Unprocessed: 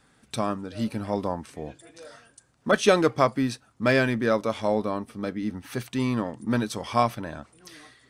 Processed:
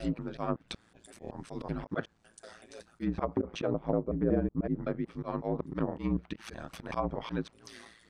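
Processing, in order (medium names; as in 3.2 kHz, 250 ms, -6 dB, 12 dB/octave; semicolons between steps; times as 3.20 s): slices played last to first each 187 ms, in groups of 5; slow attack 111 ms; ring modulator 56 Hz; low-pass that closes with the level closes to 450 Hz, closed at -24.5 dBFS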